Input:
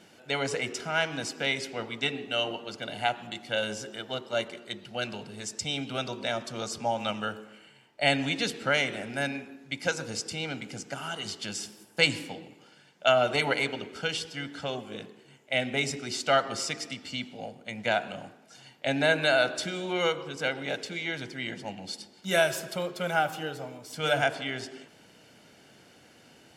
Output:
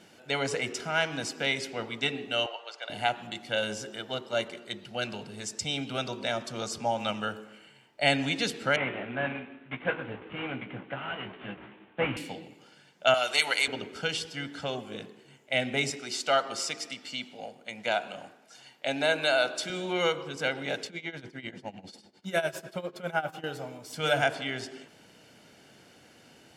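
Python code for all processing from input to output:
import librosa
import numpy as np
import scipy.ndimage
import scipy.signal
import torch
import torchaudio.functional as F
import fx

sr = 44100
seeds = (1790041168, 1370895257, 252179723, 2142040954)

y = fx.chain(x, sr, fx.highpass(hz=580.0, slope=24),
    fx.air_absorb(metres=66.0), at=(2.46, 2.9))
y = fx.chain(y, sr, fx.cvsd(bps=16000),
    fx.highpass(hz=100.0, slope=12),
    fx.doubler(ms=16.0, db=-6.0), at=(8.76, 12.17))
y = fx.chain(y, sr, fx.highpass(hz=1200.0, slope=6),
    fx.high_shelf(hz=3400.0, db=11.0), at=(13.14, 13.68))
y = fx.chain(y, sr, fx.highpass(hz=390.0, slope=6),
    fx.dynamic_eq(hz=1800.0, q=4.0, threshold_db=-46.0, ratio=4.0, max_db=-6), at=(15.9, 19.7))
y = fx.chain(y, sr, fx.high_shelf(hz=3200.0, db=-7.0),
    fx.tremolo(hz=10.0, depth=0.85), at=(20.87, 23.44))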